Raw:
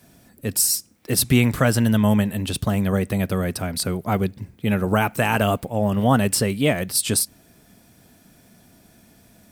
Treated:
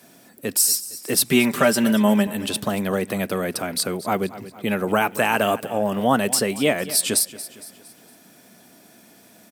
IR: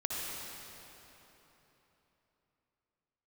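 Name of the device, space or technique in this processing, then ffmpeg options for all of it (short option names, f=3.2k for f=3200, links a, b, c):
parallel compression: -filter_complex "[0:a]highpass=250,asettb=1/sr,asplit=3[a][b][c];[a]atrim=end=1.314[d];[b]atrim=start=1.31:end=2.27,asetpts=PTS-STARTPTS,afade=t=in:d=0.004:c=qsin,afade=t=out:st=0.956:d=0.004:c=qsin,aecho=1:1:5.1:0.76,atrim=end_sample=42336[e];[c]atrim=start=2.266[f];[d][e]acrossfade=d=0.004:c1=hsin:c2=qsin[g];[g][f]acrossfade=d=0.004:c1=qsin:c2=hsin,aecho=1:1:229|458|687|916:0.133|0.0587|0.0258|0.0114,asplit=2[h][i];[i]acompressor=threshold=-31dB:ratio=6,volume=-3.5dB[j];[h][j]amix=inputs=2:normalize=0"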